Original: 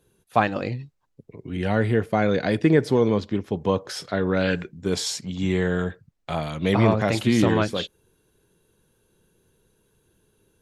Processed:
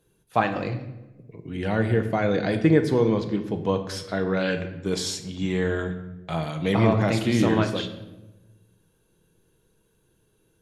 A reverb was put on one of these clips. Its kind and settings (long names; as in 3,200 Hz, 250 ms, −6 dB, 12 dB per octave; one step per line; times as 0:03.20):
rectangular room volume 480 cubic metres, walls mixed, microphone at 0.6 metres
level −2.5 dB